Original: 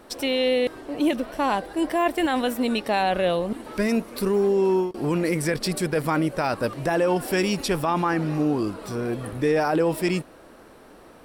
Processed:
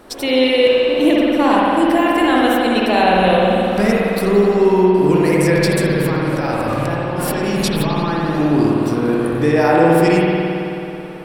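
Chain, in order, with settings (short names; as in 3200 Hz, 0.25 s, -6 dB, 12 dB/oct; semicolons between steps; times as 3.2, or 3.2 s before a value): 5.89–8.28 negative-ratio compressor -29 dBFS, ratio -1; spring tank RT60 3 s, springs 54 ms, chirp 35 ms, DRR -4.5 dB; gain +4.5 dB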